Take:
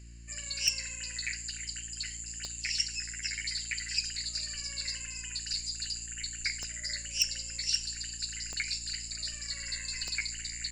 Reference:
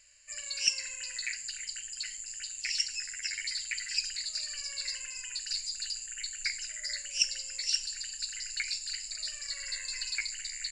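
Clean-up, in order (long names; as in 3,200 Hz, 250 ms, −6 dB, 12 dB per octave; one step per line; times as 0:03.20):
clipped peaks rebuilt −16.5 dBFS
click removal
hum removal 57.6 Hz, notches 6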